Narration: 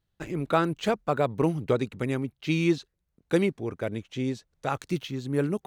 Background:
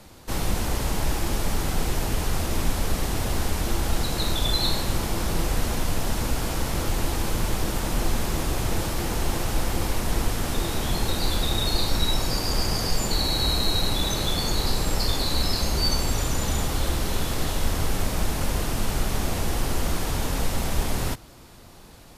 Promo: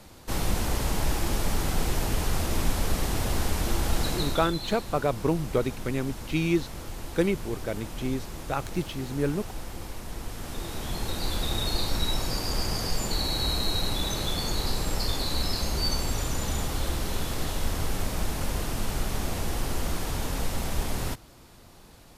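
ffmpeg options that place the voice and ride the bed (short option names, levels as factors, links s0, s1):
-filter_complex "[0:a]adelay=3850,volume=0.891[s0];[1:a]volume=2.24,afade=t=out:st=4.08:d=0.46:silence=0.281838,afade=t=in:st=10.19:d=1.34:silence=0.375837[s1];[s0][s1]amix=inputs=2:normalize=0"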